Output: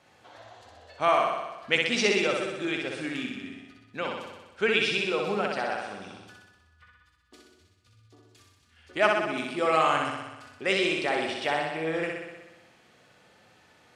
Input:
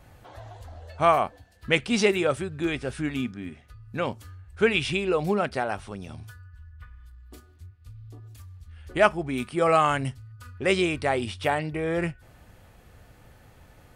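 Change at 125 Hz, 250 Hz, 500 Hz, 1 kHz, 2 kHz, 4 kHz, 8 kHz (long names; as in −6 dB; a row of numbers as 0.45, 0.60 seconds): −10.5, −4.5, −2.5, −1.5, +1.0, +2.5, −1.0 decibels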